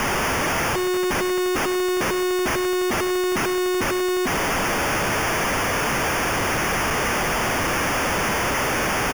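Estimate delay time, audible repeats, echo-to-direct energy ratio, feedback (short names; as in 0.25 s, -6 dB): 0.101 s, 2, -14.5 dB, 18%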